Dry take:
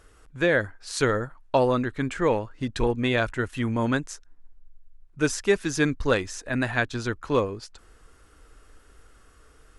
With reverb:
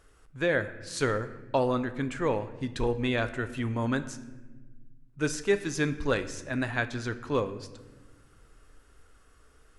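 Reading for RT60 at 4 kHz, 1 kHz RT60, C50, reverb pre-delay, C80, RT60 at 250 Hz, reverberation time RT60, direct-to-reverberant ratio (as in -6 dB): 0.85 s, 1.1 s, 13.5 dB, 7 ms, 15.5 dB, 2.1 s, 1.3 s, 10.5 dB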